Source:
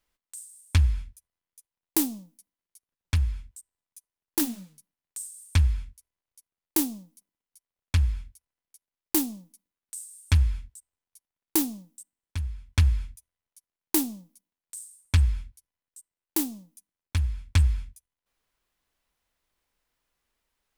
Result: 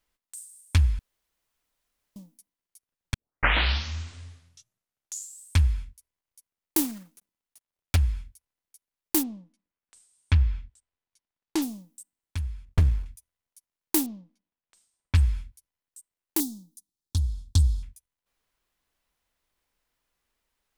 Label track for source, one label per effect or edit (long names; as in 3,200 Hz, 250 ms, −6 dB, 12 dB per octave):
0.990000	2.160000	fill with room tone
3.140000	3.140000	tape start 2.44 s
6.820000	7.970000	one scale factor per block 3 bits
9.220000	11.610000	low-pass filter 2,400 Hz → 5,300 Hz
12.650000	13.060000	windowed peak hold over 65 samples
14.060000	15.150000	high-frequency loss of the air 240 metres
16.400000	17.830000	drawn EQ curve 350 Hz 0 dB, 580 Hz −14 dB, 830 Hz −5 dB, 1,400 Hz −15 dB, 2,300 Hz −25 dB, 3,700 Hz +3 dB, 6,800 Hz +4 dB, 14,000 Hz +1 dB